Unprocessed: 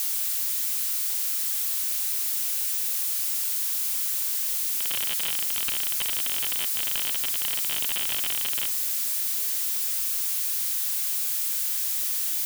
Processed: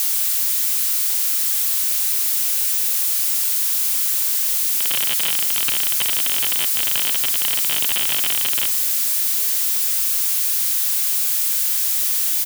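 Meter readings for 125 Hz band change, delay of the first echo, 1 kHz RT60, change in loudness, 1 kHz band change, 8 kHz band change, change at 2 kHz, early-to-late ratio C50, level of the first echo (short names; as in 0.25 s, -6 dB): n/a, 0.166 s, none, +7.5 dB, +7.5 dB, +7.5 dB, +7.5 dB, none, -20.0 dB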